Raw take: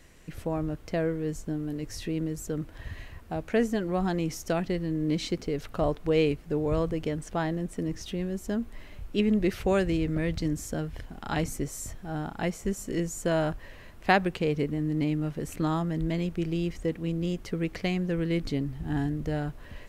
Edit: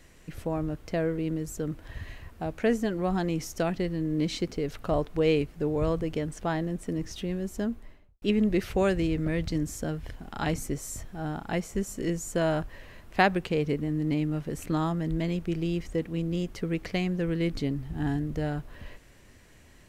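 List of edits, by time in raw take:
0:01.18–0:02.08: remove
0:08.50–0:09.12: fade out and dull

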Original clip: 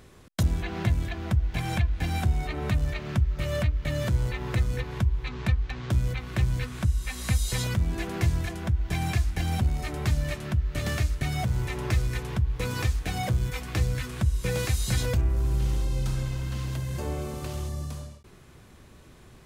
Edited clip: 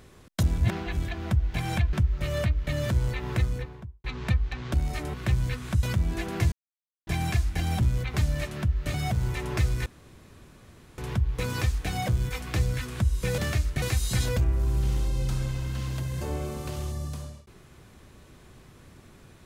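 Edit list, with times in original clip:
0:00.58–0:00.97: reverse
0:01.93–0:03.11: remove
0:04.54–0:05.22: fade out and dull
0:05.92–0:06.24: swap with 0:09.63–0:10.03
0:06.93–0:07.64: remove
0:08.33–0:08.88: silence
0:10.83–0:11.27: move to 0:14.59
0:12.19: splice in room tone 1.12 s

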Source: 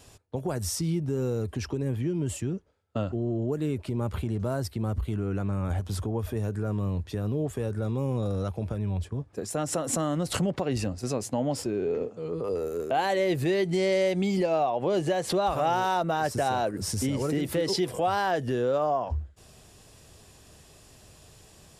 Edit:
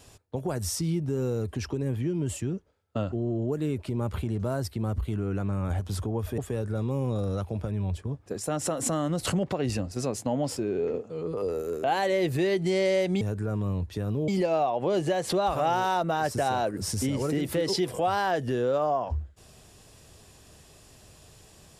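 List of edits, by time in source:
0:06.38–0:07.45: move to 0:14.28

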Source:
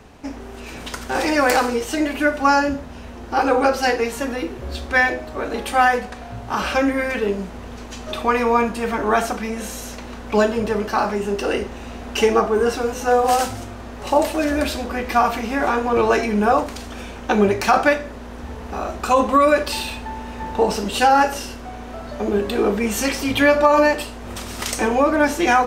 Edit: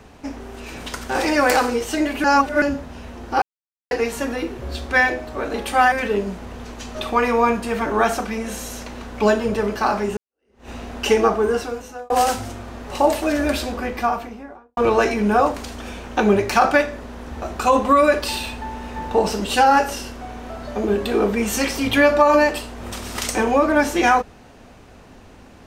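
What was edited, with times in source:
0:02.24–0:02.62: reverse
0:03.42–0:03.91: silence
0:05.92–0:07.04: remove
0:11.29–0:11.81: fade in exponential
0:12.50–0:13.22: fade out
0:14.78–0:15.89: fade out and dull
0:18.54–0:18.86: remove

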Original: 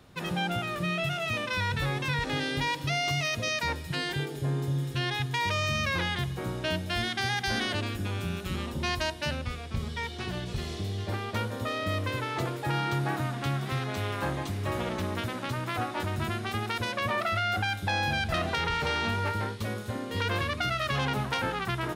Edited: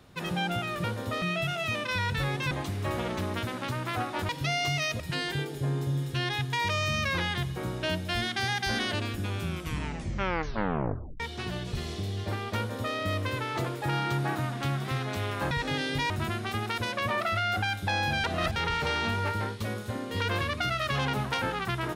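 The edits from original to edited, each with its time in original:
0:02.13–0:02.72: swap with 0:14.32–0:16.10
0:03.43–0:03.81: remove
0:08.23: tape stop 1.78 s
0:11.38–0:11.76: duplicate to 0:00.84
0:18.24–0:18.56: reverse

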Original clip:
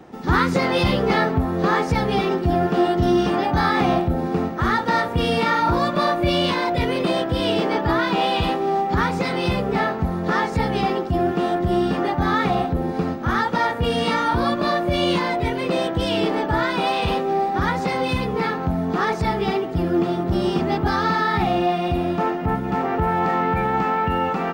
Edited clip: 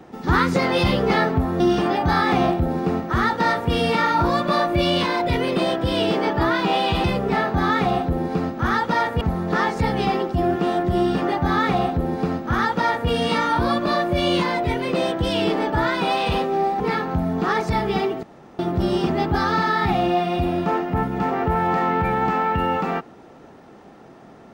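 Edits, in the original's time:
0:01.60–0:03.08: remove
0:08.52–0:09.47: remove
0:12.18–0:13.85: duplicate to 0:09.97
0:17.56–0:18.32: remove
0:19.75–0:20.11: fill with room tone

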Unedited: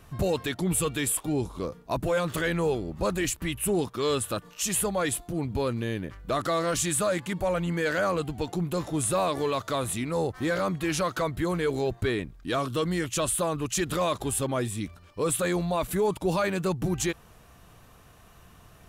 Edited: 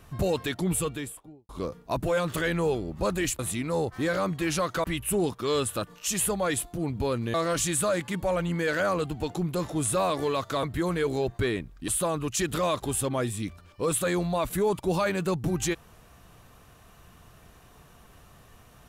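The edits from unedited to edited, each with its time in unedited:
0:00.63–0:01.49: fade out and dull
0:05.89–0:06.52: remove
0:09.81–0:11.26: move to 0:03.39
0:12.51–0:13.26: remove

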